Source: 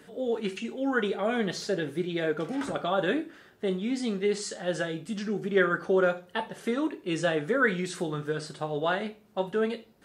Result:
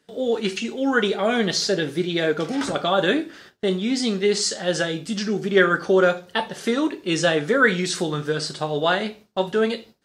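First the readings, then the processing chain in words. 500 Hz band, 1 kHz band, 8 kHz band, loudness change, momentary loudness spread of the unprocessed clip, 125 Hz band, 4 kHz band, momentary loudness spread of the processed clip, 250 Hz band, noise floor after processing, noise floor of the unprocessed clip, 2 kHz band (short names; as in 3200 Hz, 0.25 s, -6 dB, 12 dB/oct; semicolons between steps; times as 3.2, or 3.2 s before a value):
+6.5 dB, +7.0 dB, +12.5 dB, +7.5 dB, 8 LU, +6.5 dB, +12.5 dB, 8 LU, +6.5 dB, -53 dBFS, -57 dBFS, +7.5 dB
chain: gate with hold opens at -42 dBFS; bell 5000 Hz +9 dB 1.3 oct; gain +6.5 dB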